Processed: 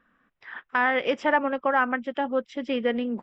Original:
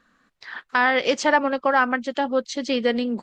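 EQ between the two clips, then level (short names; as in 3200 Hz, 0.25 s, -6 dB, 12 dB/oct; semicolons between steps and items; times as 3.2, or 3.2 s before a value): polynomial smoothing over 25 samples; -3.5 dB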